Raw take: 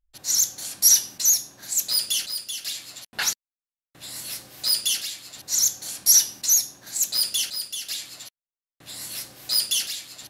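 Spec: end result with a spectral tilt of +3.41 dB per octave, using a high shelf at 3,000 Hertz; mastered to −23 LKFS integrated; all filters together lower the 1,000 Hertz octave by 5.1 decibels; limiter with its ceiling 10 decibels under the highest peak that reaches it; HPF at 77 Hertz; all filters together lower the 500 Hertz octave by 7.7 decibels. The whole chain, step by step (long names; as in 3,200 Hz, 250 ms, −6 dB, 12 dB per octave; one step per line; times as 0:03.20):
high-pass filter 77 Hz
parametric band 500 Hz −8.5 dB
parametric band 1,000 Hz −6.5 dB
high-shelf EQ 3,000 Hz +9 dB
level −5 dB
brickwall limiter −12 dBFS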